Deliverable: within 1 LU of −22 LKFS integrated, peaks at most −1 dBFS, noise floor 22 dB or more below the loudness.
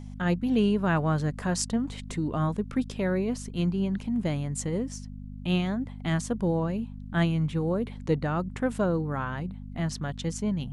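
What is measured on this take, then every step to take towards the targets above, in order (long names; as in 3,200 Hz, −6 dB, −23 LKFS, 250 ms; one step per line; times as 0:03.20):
mains hum 50 Hz; hum harmonics up to 250 Hz; level of the hum −37 dBFS; integrated loudness −29.0 LKFS; sample peak −9.5 dBFS; target loudness −22.0 LKFS
→ hum removal 50 Hz, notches 5
level +7 dB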